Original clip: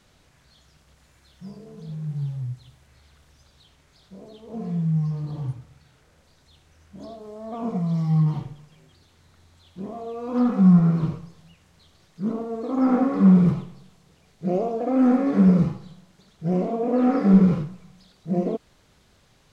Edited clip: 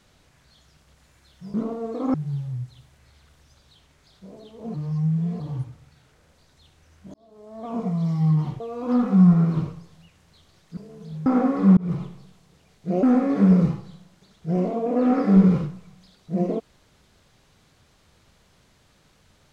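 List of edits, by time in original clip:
1.54–2.03 s: swap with 12.23–12.83 s
4.63–5.29 s: reverse
7.03–7.63 s: fade in
8.49–10.06 s: delete
13.34–13.63 s: fade in
14.60–15.00 s: delete

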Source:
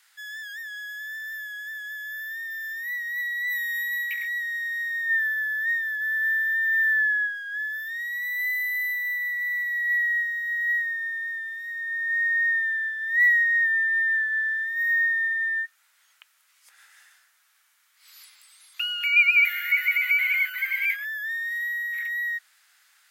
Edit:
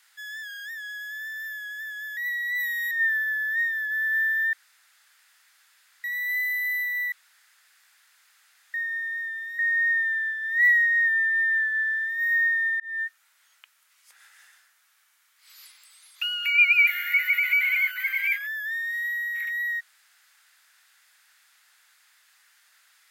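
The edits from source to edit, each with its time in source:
0.48 s: stutter 0.03 s, 5 plays
2.05–3.09 s: delete
3.83–5.01 s: delete
6.63–8.14 s: room tone
9.22–10.84 s: room tone
11.69–12.17 s: delete
15.38–15.63 s: fade in

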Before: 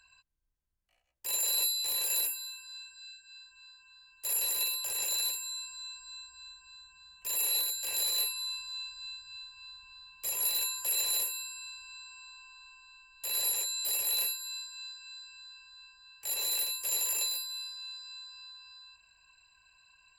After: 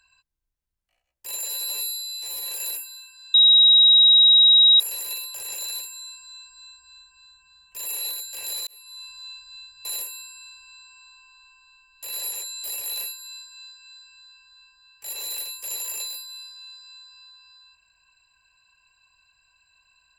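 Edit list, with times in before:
1.46–1.96 s: stretch 2×
2.84–4.30 s: bleep 3.82 kHz -10.5 dBFS
8.17–8.66 s: fade in
9.35–11.06 s: delete

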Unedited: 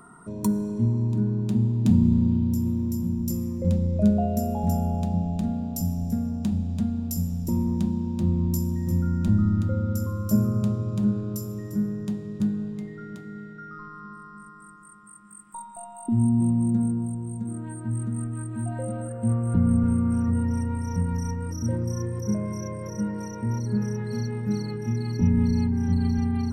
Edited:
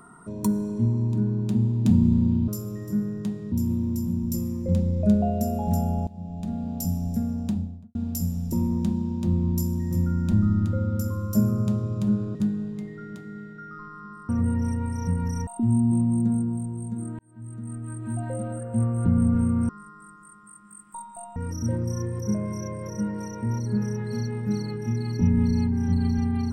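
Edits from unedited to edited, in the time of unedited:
5.03–5.71 s: fade in, from -23 dB
6.37–6.91 s: studio fade out
11.31–12.35 s: move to 2.48 s
14.29–15.96 s: swap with 20.18–21.36 s
17.68–18.62 s: fade in

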